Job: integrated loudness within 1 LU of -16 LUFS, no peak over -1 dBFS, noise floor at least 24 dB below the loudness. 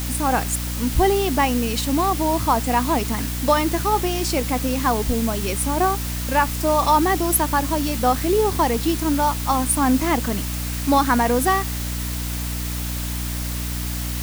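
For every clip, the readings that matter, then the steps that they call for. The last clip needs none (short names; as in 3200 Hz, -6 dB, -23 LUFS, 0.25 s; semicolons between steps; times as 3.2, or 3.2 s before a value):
hum 60 Hz; harmonics up to 300 Hz; hum level -25 dBFS; noise floor -26 dBFS; noise floor target -45 dBFS; loudness -21.0 LUFS; peak -5.5 dBFS; loudness target -16.0 LUFS
-> de-hum 60 Hz, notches 5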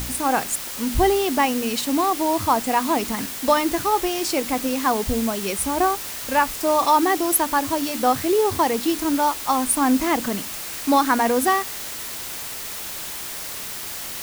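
hum none; noise floor -32 dBFS; noise floor target -46 dBFS
-> noise print and reduce 14 dB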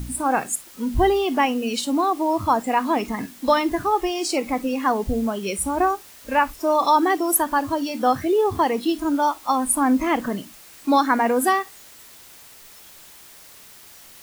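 noise floor -46 dBFS; loudness -21.5 LUFS; peak -7.0 dBFS; loudness target -16.0 LUFS
-> gain +5.5 dB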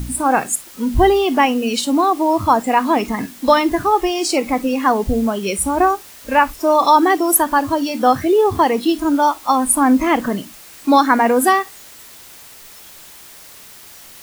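loudness -16.0 LUFS; peak -1.5 dBFS; noise floor -41 dBFS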